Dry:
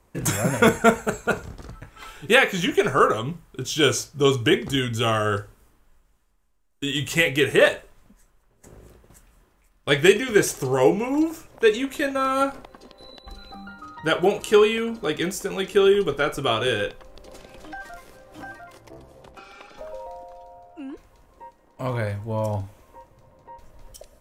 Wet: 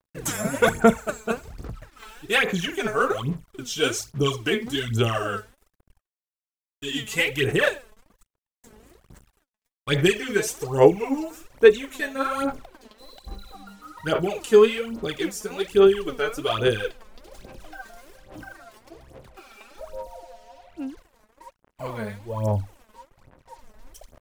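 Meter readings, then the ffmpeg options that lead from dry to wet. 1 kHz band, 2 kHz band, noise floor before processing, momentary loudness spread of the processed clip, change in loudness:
−3.5 dB, −2.5 dB, −62 dBFS, 22 LU, −1.5 dB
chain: -af "acrusher=bits=7:mix=0:aa=0.5,aphaser=in_gain=1:out_gain=1:delay=4.7:decay=0.72:speed=1.2:type=sinusoidal,volume=-6dB"

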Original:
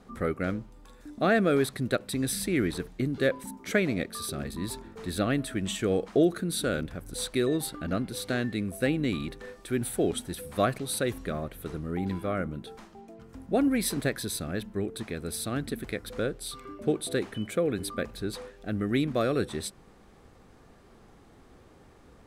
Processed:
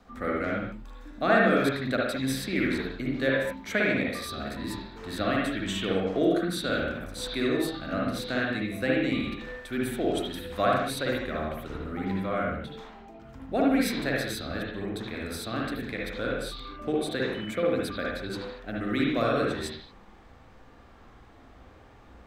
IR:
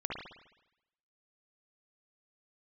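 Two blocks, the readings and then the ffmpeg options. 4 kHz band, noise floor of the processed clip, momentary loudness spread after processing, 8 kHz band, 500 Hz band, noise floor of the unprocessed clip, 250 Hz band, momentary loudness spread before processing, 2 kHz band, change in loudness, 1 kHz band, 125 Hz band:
+2.0 dB, −52 dBFS, 11 LU, −6.5 dB, +1.0 dB, −55 dBFS, +0.5 dB, 11 LU, +5.0 dB, +1.0 dB, +4.5 dB, −2.0 dB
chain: -filter_complex "[0:a]equalizer=frequency=160:width_type=o:width=0.67:gain=-9,equalizer=frequency=400:width_type=o:width=0.67:gain=-7,equalizer=frequency=10000:width_type=o:width=0.67:gain=-10,acrossover=split=160|920|4500[link_01][link_02][link_03][link_04];[link_01]alimiter=level_in=18.5dB:limit=-24dB:level=0:latency=1,volume=-18.5dB[link_05];[link_05][link_02][link_03][link_04]amix=inputs=4:normalize=0[link_06];[1:a]atrim=start_sample=2205,afade=type=out:start_time=0.3:duration=0.01,atrim=end_sample=13671[link_07];[link_06][link_07]afir=irnorm=-1:irlink=0,volume=2dB"

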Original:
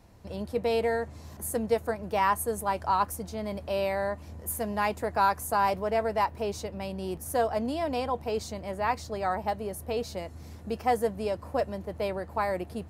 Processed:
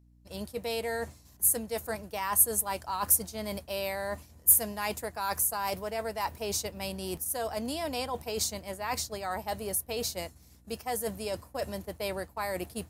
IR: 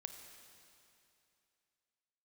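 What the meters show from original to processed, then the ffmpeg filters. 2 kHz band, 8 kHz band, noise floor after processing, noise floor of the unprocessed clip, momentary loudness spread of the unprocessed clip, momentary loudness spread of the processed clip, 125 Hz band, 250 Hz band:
−3.0 dB, +12.0 dB, −57 dBFS, −46 dBFS, 9 LU, 13 LU, −5.0 dB, −4.5 dB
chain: -af "agate=range=-33dB:threshold=-32dB:ratio=3:detection=peak,areverse,acompressor=threshold=-32dB:ratio=6,areverse,aeval=exprs='val(0)+0.00112*(sin(2*PI*60*n/s)+sin(2*PI*2*60*n/s)/2+sin(2*PI*3*60*n/s)/3+sin(2*PI*4*60*n/s)/4+sin(2*PI*5*60*n/s)/5)':channel_layout=same,crystalizer=i=5:c=0"

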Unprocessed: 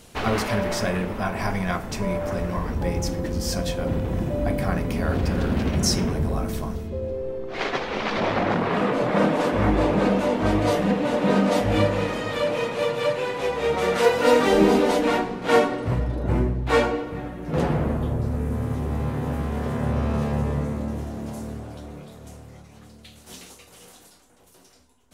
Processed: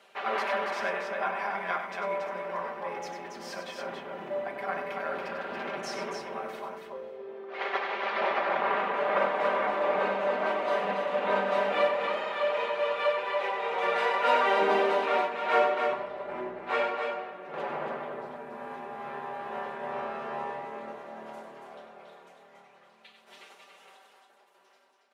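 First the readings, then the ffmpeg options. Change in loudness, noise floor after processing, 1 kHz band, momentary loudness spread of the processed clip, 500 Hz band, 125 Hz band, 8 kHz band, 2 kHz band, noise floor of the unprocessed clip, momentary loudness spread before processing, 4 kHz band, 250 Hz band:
−6.5 dB, −60 dBFS, −1.5 dB, 15 LU, −6.0 dB, below −25 dB, below −15 dB, −2.0 dB, −50 dBFS, 11 LU, −7.5 dB, −19.0 dB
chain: -filter_complex "[0:a]highpass=330,acrossover=split=500 3200:gain=0.2 1 0.1[link_01][link_02][link_03];[link_01][link_02][link_03]amix=inputs=3:normalize=0,aecho=1:1:5.1:0.64,tremolo=f=2.3:d=0.34,aecho=1:1:96.21|279.9:0.398|0.562,volume=-2.5dB"

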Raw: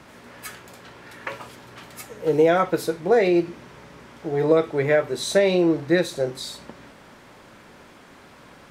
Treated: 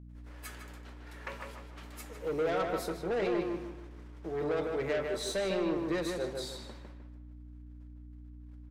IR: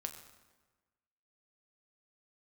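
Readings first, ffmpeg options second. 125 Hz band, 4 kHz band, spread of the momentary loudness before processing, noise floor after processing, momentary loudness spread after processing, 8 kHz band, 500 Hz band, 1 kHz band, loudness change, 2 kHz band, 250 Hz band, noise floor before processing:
−11.5 dB, −9.5 dB, 20 LU, −49 dBFS, 20 LU, −9.5 dB, −12.5 dB, −11.0 dB, −13.0 dB, −11.5 dB, −12.0 dB, −49 dBFS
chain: -filter_complex "[0:a]highpass=frequency=150:width=0.5412,highpass=frequency=150:width=1.3066,agate=range=-33dB:threshold=-44dB:ratio=16:detection=peak,aeval=exprs='val(0)+0.0112*(sin(2*PI*60*n/s)+sin(2*PI*2*60*n/s)/2+sin(2*PI*3*60*n/s)/3+sin(2*PI*4*60*n/s)/4+sin(2*PI*5*60*n/s)/5)':channel_layout=same,asoftclip=type=tanh:threshold=-19.5dB,asplit=2[link_01][link_02];[link_02]adelay=153,lowpass=frequency=2900:poles=1,volume=-3.5dB,asplit=2[link_03][link_04];[link_04]adelay=153,lowpass=frequency=2900:poles=1,volume=0.36,asplit=2[link_05][link_06];[link_06]adelay=153,lowpass=frequency=2900:poles=1,volume=0.36,asplit=2[link_07][link_08];[link_08]adelay=153,lowpass=frequency=2900:poles=1,volume=0.36,asplit=2[link_09][link_10];[link_10]adelay=153,lowpass=frequency=2900:poles=1,volume=0.36[link_11];[link_03][link_05][link_07][link_09][link_11]amix=inputs=5:normalize=0[link_12];[link_01][link_12]amix=inputs=2:normalize=0,volume=-9dB"

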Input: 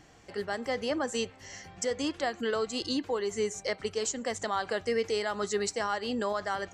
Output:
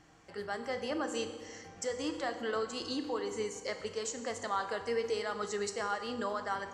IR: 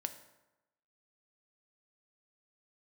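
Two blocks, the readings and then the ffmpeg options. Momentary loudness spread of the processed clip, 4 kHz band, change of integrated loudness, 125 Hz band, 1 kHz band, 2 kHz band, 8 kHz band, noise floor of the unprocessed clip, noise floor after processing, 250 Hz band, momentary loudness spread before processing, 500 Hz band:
5 LU, −5.5 dB, −4.5 dB, −5.5 dB, −2.5 dB, −4.0 dB, −5.5 dB, −54 dBFS, −52 dBFS, −5.0 dB, 4 LU, −4.5 dB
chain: -filter_complex "[0:a]equalizer=frequency=1200:width_type=o:width=0.8:gain=5[link_01];[1:a]atrim=start_sample=2205,asetrate=23814,aresample=44100[link_02];[link_01][link_02]afir=irnorm=-1:irlink=0,volume=-8dB"

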